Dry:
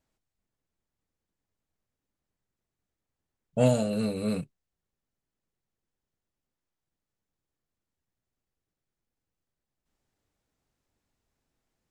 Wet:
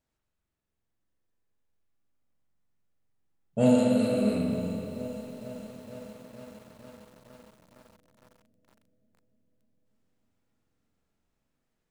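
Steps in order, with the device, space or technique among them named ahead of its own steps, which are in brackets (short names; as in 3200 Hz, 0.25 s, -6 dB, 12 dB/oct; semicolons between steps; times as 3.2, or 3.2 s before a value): dub delay into a spring reverb (darkening echo 0.298 s, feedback 82%, low-pass 1700 Hz, level -20.5 dB; spring tank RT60 2 s, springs 44 ms, chirp 45 ms, DRR -1 dB); 3.78–4.21 tilt +1.5 dB/oct; split-band echo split 590 Hz, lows 0.252 s, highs 0.115 s, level -7.5 dB; dynamic EQ 240 Hz, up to +5 dB, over -38 dBFS, Q 0.84; lo-fi delay 0.459 s, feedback 80%, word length 7-bit, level -14.5 dB; gain -4 dB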